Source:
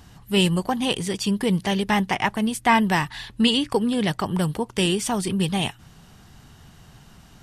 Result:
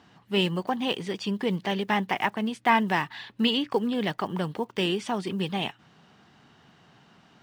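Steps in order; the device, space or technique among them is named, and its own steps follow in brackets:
early digital voice recorder (band-pass filter 210–3,700 Hz; one scale factor per block 7 bits)
level −3 dB

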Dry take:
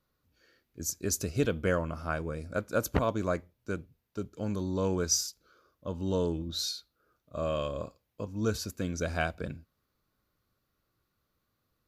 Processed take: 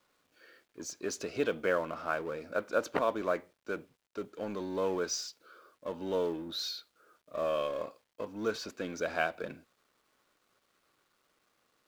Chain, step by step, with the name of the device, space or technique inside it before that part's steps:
phone line with mismatched companding (band-pass filter 380–3,400 Hz; mu-law and A-law mismatch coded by mu)

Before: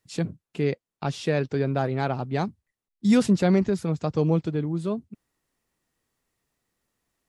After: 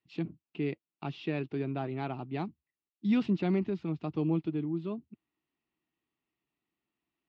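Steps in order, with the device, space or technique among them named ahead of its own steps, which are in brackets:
guitar cabinet (loudspeaker in its box 80–3,700 Hz, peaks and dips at 100 Hz −9 dB, 320 Hz +8 dB, 520 Hz −10 dB, 1,600 Hz −6 dB, 2,700 Hz +6 dB)
level −8.5 dB

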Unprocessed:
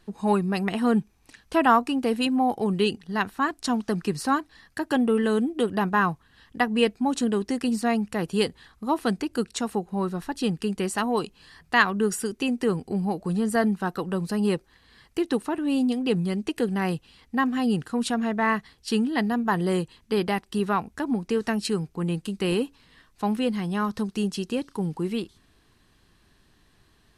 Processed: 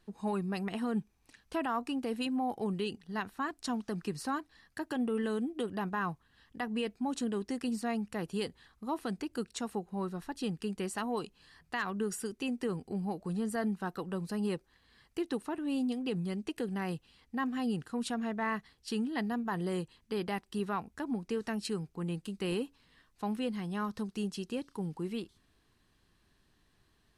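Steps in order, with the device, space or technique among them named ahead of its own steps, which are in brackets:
clipper into limiter (hard clipping −8 dBFS, distortion −39 dB; brickwall limiter −15.5 dBFS, peak gain reduction 7.5 dB)
level −9 dB

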